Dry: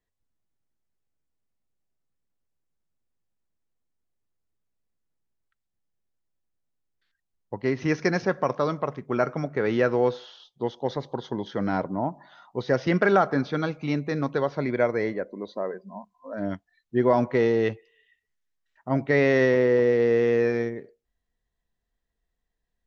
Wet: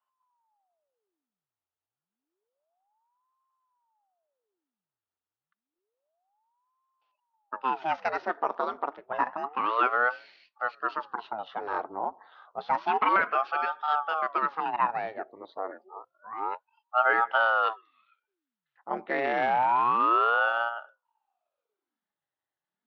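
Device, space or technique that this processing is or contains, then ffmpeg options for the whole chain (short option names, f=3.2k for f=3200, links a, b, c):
voice changer toy: -af "aeval=exprs='val(0)*sin(2*PI*570*n/s+570*0.85/0.29*sin(2*PI*0.29*n/s))':c=same,highpass=510,equalizer=f=520:t=q:w=4:g=-4,equalizer=f=860:t=q:w=4:g=4,equalizer=f=1.3k:t=q:w=4:g=4,equalizer=f=2.2k:t=q:w=4:g=-6,lowpass=f=3.7k:w=0.5412,lowpass=f=3.7k:w=1.3066"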